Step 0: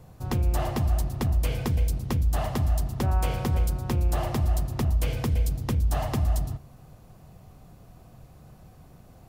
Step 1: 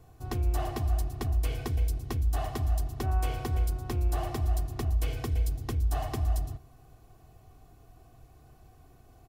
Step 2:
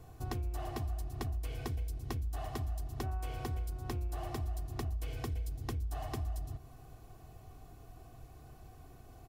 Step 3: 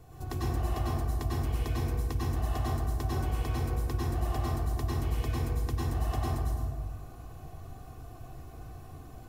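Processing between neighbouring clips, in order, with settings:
comb 2.7 ms, depth 65%; trim -6.5 dB
compression 6:1, threshold -37 dBFS, peak gain reduction 14 dB; trim +2 dB
plate-style reverb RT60 1.5 s, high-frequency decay 0.45×, pre-delay 85 ms, DRR -6.5 dB

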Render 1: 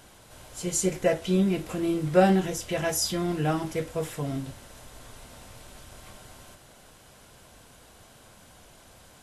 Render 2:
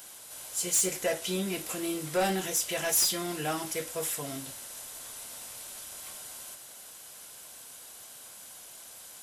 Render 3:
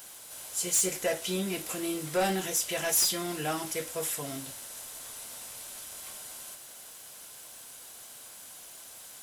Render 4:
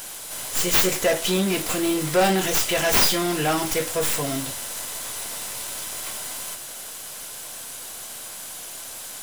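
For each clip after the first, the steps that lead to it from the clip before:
RIAA curve recording; saturation -20 dBFS, distortion -7 dB; trim -1.5 dB
word length cut 10-bit, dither triangular
tracing distortion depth 0.072 ms; in parallel at -9 dB: wavefolder -33 dBFS; on the sum: trim +9 dB

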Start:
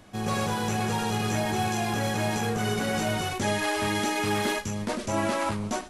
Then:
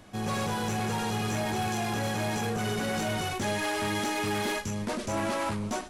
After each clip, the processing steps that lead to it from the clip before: saturation -24.5 dBFS, distortion -14 dB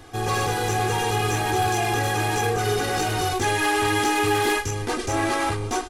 comb 2.5 ms, depth 91%; trim +5 dB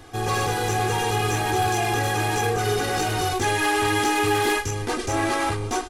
no audible change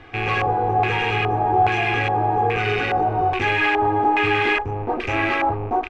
rattle on loud lows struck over -39 dBFS, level -21 dBFS; LFO low-pass square 1.2 Hz 800–2400 Hz

